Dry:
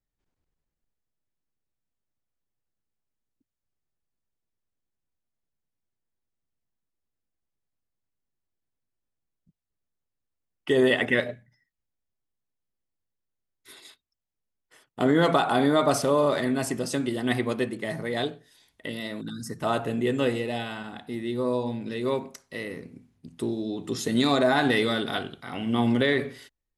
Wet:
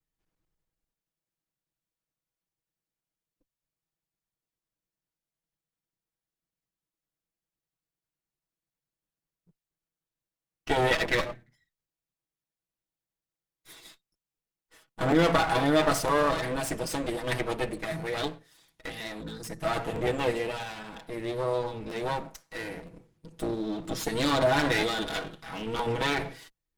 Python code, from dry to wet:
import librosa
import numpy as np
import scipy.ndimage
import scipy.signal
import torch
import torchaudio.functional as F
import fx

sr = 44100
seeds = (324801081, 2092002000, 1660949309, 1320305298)

y = fx.lower_of_two(x, sr, delay_ms=6.2)
y = fx.buffer_crackle(y, sr, first_s=0.55, period_s=0.97, block=512, kind='repeat')